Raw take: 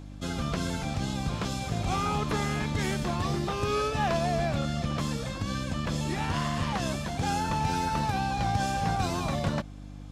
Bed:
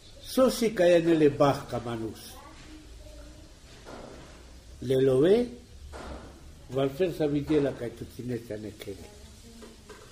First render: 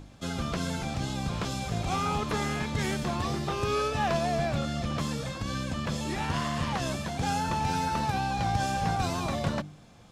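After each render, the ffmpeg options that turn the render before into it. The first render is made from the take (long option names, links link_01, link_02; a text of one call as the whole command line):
ffmpeg -i in.wav -af "bandreject=frequency=50:width_type=h:width=4,bandreject=frequency=100:width_type=h:width=4,bandreject=frequency=150:width_type=h:width=4,bandreject=frequency=200:width_type=h:width=4,bandreject=frequency=250:width_type=h:width=4,bandreject=frequency=300:width_type=h:width=4,bandreject=frequency=350:width_type=h:width=4" out.wav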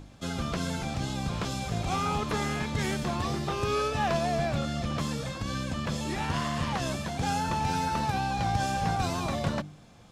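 ffmpeg -i in.wav -af anull out.wav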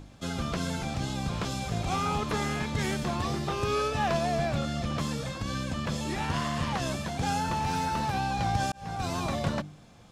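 ffmpeg -i in.wav -filter_complex "[0:a]asettb=1/sr,asplit=3[link_01][link_02][link_03];[link_01]atrim=end=7.464[link_04];[link_02]atrim=start=7.46:end=8.16,asetpts=PTS-STARTPTS,afade=type=in:duration=0.004:curve=qsin,afade=type=out:start_time=0.696:duration=0.004:curve=qsin,volume=24dB,asoftclip=hard,volume=-24dB[link_05];[link_03]atrim=start=8.156[link_06];[link_04][link_05]acrossfade=duration=0.004:curve1=hsin:curve2=qsin[link_07];[link_07][link_06]acrossfade=duration=0.004:curve1=qsin:curve2=hsin,asplit=2[link_08][link_09];[link_08]atrim=end=8.72,asetpts=PTS-STARTPTS,afade=type=out:start_time=8.716:duration=0.004:curve=hsin[link_10];[link_09]atrim=start=8.72,asetpts=PTS-STARTPTS,afade=type=in:duration=0.45[link_11];[link_10][link_11]concat=n=2:v=0:a=1" out.wav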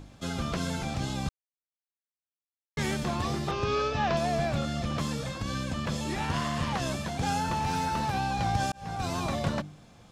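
ffmpeg -i in.wav -filter_complex "[0:a]asettb=1/sr,asplit=3[link_01][link_02][link_03];[link_01]atrim=end=3.514[link_04];[link_02]atrim=start=3.51:end=4.17,asetpts=PTS-STARTPTS,afade=type=in:duration=0.004:curve=qsin,afade=type=out:start_time=0.656:duration=0.004:curve=qsin,lowpass=frequency=6000:width=0.5412,lowpass=frequency=6000:width=1.3066[link_05];[link_03]atrim=start=4.166[link_06];[link_04][link_05]acrossfade=duration=0.004:curve1=hsin:curve2=qsin[link_07];[link_07][link_06]acrossfade=duration=0.004:curve1=qsin:curve2=hsin,asplit=3[link_08][link_09][link_10];[link_08]atrim=end=1.29,asetpts=PTS-STARTPTS,afade=type=out:start_time=1.286:duration=0.004:curve=hsin[link_11];[link_09]atrim=start=1.29:end=2.77,asetpts=PTS-STARTPTS,volume=0[link_12];[link_10]atrim=start=2.77,asetpts=PTS-STARTPTS,afade=type=in:duration=0.004:curve=hsin[link_13];[link_11][link_12][link_13]concat=n=3:v=0:a=1" out.wav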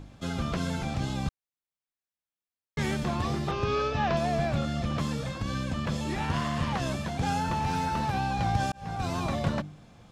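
ffmpeg -i in.wav -af "bass=frequency=250:gain=2,treble=frequency=4000:gain=-4" out.wav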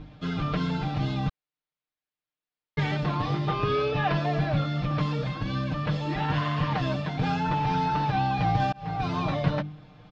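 ffmpeg -i in.wav -af "lowpass=frequency=4400:width=0.5412,lowpass=frequency=4400:width=1.3066,aecho=1:1:6.6:0.93" out.wav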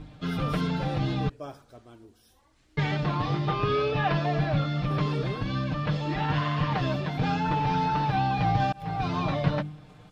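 ffmpeg -i in.wav -i bed.wav -filter_complex "[1:a]volume=-17dB[link_01];[0:a][link_01]amix=inputs=2:normalize=0" out.wav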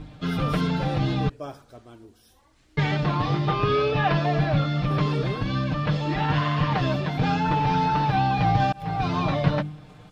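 ffmpeg -i in.wav -af "volume=3.5dB" out.wav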